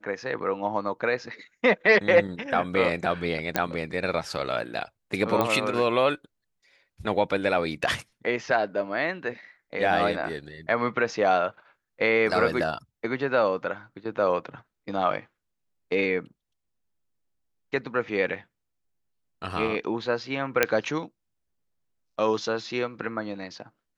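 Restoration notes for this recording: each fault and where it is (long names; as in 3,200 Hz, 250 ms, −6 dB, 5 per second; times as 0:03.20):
0:03.56: click −7 dBFS
0:05.41: click −11 dBFS
0:20.63: click −4 dBFS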